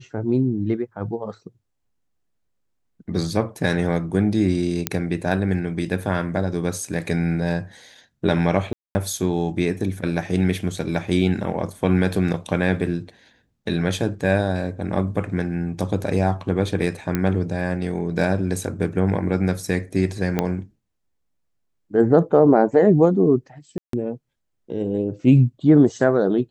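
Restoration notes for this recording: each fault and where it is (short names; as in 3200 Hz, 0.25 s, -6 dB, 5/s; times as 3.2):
4.87 pop -2 dBFS
8.73–8.95 gap 0.22 s
17.15 pop -9 dBFS
20.39 pop -7 dBFS
23.78–23.93 gap 0.153 s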